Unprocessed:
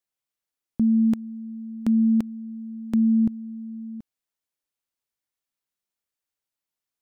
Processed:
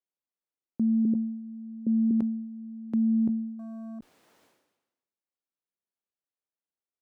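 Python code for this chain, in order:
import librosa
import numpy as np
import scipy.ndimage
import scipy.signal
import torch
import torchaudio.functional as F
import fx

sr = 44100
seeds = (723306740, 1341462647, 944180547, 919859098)

y = fx.ellip_lowpass(x, sr, hz=540.0, order=4, stop_db=40, at=(1.05, 2.11))
y = fx.tilt_eq(y, sr, slope=-4.5)
y = fx.leveller(y, sr, passes=1, at=(3.59, 3.99))
y = scipy.signal.sosfilt(scipy.signal.butter(2, 320.0, 'highpass', fs=sr, output='sos'), y)
y = fx.sustainer(y, sr, db_per_s=55.0)
y = F.gain(torch.from_numpy(y), -7.5).numpy()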